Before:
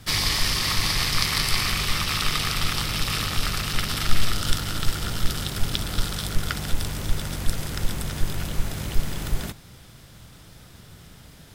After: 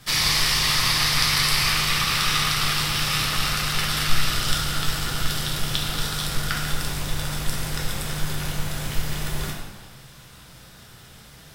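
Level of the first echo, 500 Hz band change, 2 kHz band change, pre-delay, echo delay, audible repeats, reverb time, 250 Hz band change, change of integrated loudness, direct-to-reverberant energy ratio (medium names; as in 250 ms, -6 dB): no echo, +1.0 dB, +4.0 dB, 4 ms, no echo, no echo, 1.4 s, +0.5 dB, +3.0 dB, -2.5 dB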